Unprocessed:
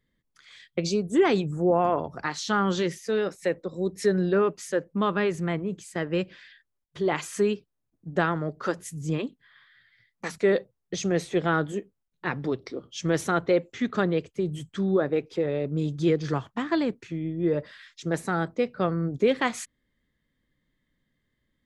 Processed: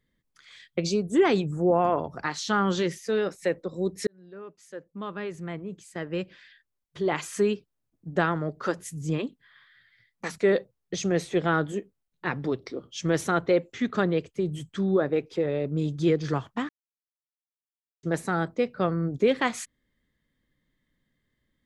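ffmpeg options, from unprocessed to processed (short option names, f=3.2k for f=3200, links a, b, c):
-filter_complex "[0:a]asplit=4[a][b][c][d];[a]atrim=end=4.07,asetpts=PTS-STARTPTS,afade=t=out:st=4.066:d=0.004:c=hsin[e];[b]atrim=start=4.07:end=16.69,asetpts=PTS-STARTPTS,afade=t=in:d=3.31,afade=t=out:st=12.616:d=0.004:c=hsin[f];[c]atrim=start=16.69:end=18.03,asetpts=PTS-STARTPTS,volume=0[g];[d]atrim=start=18.03,asetpts=PTS-STARTPTS,afade=t=in:d=0.004:c=hsin[h];[e][f][g][h]concat=n=4:v=0:a=1"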